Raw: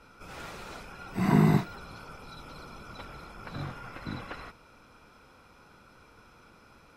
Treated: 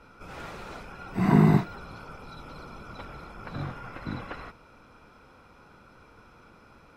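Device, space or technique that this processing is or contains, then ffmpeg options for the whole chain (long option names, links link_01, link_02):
behind a face mask: -af "highshelf=frequency=3300:gain=-8,volume=3dB"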